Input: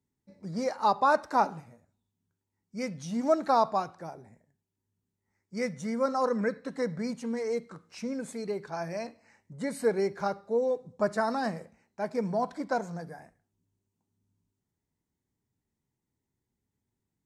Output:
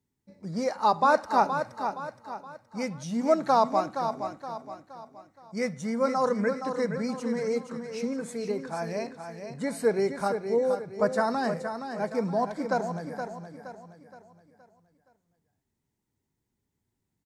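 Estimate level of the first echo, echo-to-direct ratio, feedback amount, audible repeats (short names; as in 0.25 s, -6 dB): -8.0 dB, -7.0 dB, 41%, 4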